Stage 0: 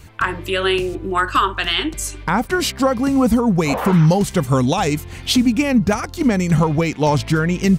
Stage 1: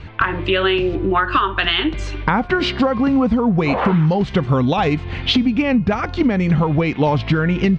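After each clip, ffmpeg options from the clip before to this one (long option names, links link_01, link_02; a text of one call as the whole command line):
ffmpeg -i in.wav -af "lowpass=frequency=3700:width=0.5412,lowpass=frequency=3700:width=1.3066,bandreject=frequency=358:width_type=h:width=4,bandreject=frequency=716:width_type=h:width=4,bandreject=frequency=1074:width_type=h:width=4,bandreject=frequency=1432:width_type=h:width=4,bandreject=frequency=1790:width_type=h:width=4,bandreject=frequency=2148:width_type=h:width=4,bandreject=frequency=2506:width_type=h:width=4,bandreject=frequency=2864:width_type=h:width=4,bandreject=frequency=3222:width_type=h:width=4,bandreject=frequency=3580:width_type=h:width=4,bandreject=frequency=3938:width_type=h:width=4,bandreject=frequency=4296:width_type=h:width=4,bandreject=frequency=4654:width_type=h:width=4,bandreject=frequency=5012:width_type=h:width=4,bandreject=frequency=5370:width_type=h:width=4,bandreject=frequency=5728:width_type=h:width=4,bandreject=frequency=6086:width_type=h:width=4,acompressor=threshold=-21dB:ratio=6,volume=7.5dB" out.wav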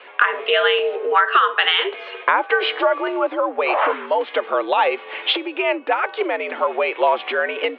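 ffmpeg -i in.wav -af "highpass=frequency=380:width_type=q:width=0.5412,highpass=frequency=380:width_type=q:width=1.307,lowpass=frequency=3300:width_type=q:width=0.5176,lowpass=frequency=3300:width_type=q:width=0.7071,lowpass=frequency=3300:width_type=q:width=1.932,afreqshift=84,volume=2dB" out.wav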